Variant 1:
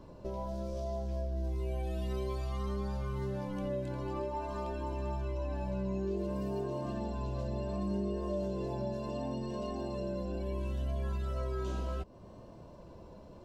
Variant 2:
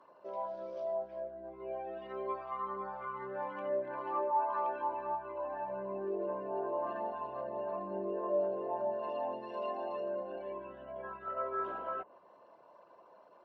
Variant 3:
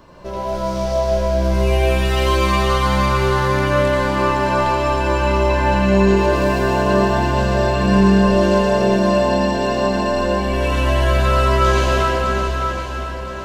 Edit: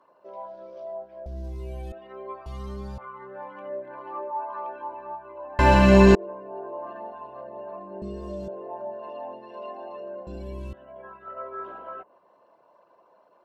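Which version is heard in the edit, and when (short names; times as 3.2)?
2
1.26–1.92 from 1
2.46–2.98 from 1
5.59–6.15 from 3
8.02–8.48 from 1
10.27–10.73 from 1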